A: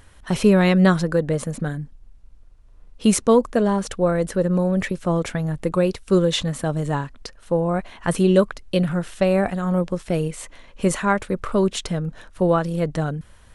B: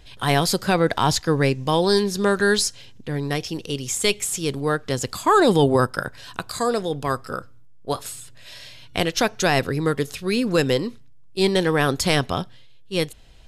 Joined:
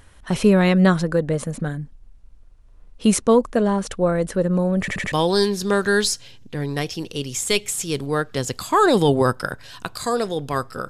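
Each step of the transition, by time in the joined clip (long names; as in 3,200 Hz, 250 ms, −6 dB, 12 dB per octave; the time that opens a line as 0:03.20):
A
0:04.80: stutter in place 0.08 s, 4 plays
0:05.12: continue with B from 0:01.66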